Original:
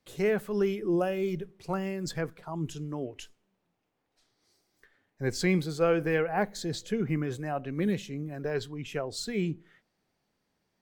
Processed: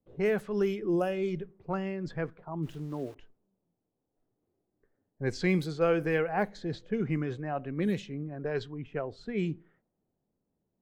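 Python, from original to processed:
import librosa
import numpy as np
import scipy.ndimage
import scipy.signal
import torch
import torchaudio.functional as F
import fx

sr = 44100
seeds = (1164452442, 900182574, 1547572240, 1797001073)

y = fx.env_lowpass(x, sr, base_hz=520.0, full_db=-23.0)
y = fx.sample_gate(y, sr, floor_db=-49.5, at=(2.62, 3.14), fade=0.02)
y = F.gain(torch.from_numpy(y), -1.0).numpy()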